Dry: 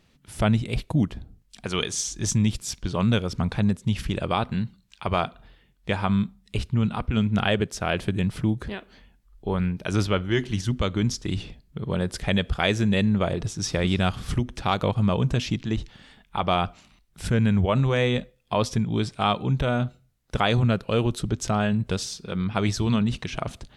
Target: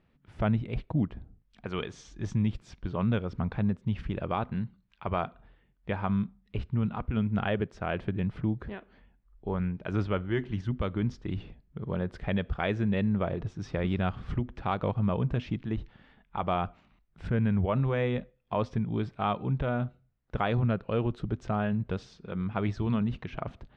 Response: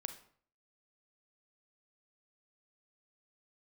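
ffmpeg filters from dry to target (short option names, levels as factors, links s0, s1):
-af "lowpass=2000,volume=0.531"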